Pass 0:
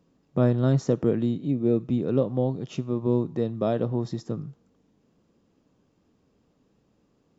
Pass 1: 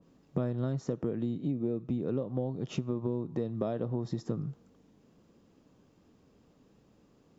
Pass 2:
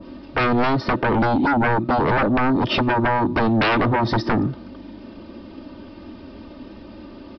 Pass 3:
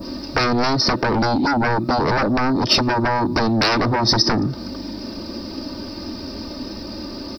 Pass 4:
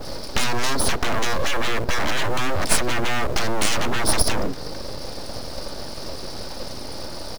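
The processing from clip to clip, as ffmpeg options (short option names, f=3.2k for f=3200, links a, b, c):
-af "acompressor=threshold=-31dB:ratio=12,adynamicequalizer=threshold=0.00158:dfrequency=1900:dqfactor=0.7:tfrequency=1900:tqfactor=0.7:attack=5:release=100:ratio=0.375:range=2:mode=cutabove:tftype=highshelf,volume=3dB"
-af "aecho=1:1:3.3:1,aresample=11025,aeval=exprs='0.141*sin(PI/2*6.31*val(0)/0.141)':c=same,aresample=44100,volume=2dB"
-af "acompressor=threshold=-25dB:ratio=6,aexciter=amount=11:drive=8.5:freq=4.9k,volume=7.5dB"
-filter_complex "[0:a]asplit=2[a][b];[b]acrusher=bits=3:mode=log:mix=0:aa=0.000001,volume=-6.5dB[c];[a][c]amix=inputs=2:normalize=0,aeval=exprs='abs(val(0))':c=same,volume=-2.5dB"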